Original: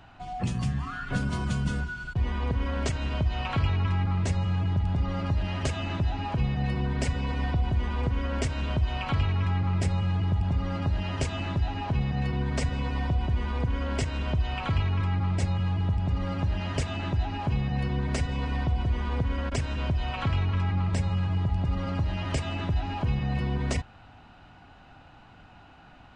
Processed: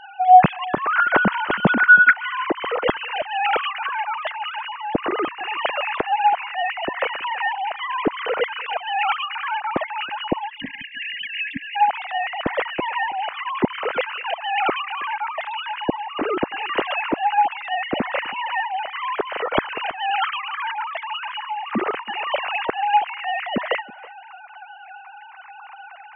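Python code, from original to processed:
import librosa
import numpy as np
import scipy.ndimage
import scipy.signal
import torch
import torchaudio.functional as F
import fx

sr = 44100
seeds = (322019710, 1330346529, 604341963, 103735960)

y = fx.sine_speech(x, sr)
y = fx.spec_erase(y, sr, start_s=10.49, length_s=1.26, low_hz=300.0, high_hz=1600.0)
y = y + 10.0 ** (-22.0 / 20.0) * np.pad(y, (int(324 * sr / 1000.0), 0))[:len(y)]
y = F.gain(torch.from_numpy(y), 4.5).numpy()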